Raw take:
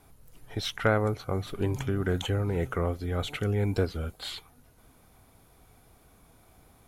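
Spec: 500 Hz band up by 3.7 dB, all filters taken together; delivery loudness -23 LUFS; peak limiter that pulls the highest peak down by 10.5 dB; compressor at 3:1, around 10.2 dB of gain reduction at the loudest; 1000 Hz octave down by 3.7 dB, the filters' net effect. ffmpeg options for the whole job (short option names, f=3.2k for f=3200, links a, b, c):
-af "equalizer=f=500:t=o:g=6,equalizer=f=1k:t=o:g=-8,acompressor=threshold=-32dB:ratio=3,volume=15dB,alimiter=limit=-13.5dB:level=0:latency=1"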